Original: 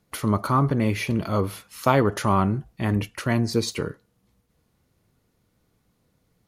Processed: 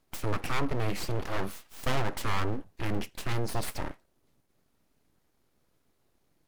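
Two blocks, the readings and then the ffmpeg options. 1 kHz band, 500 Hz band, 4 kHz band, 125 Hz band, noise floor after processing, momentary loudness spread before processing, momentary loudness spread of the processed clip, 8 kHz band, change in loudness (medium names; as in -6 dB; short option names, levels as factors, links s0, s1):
-10.0 dB, -10.0 dB, -5.0 dB, -10.0 dB, -72 dBFS, 7 LU, 6 LU, -6.0 dB, -10.0 dB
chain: -af "aeval=exprs='abs(val(0))':c=same,aeval=exprs='(tanh(3.16*val(0)+0.55)-tanh(0.55))/3.16':c=same"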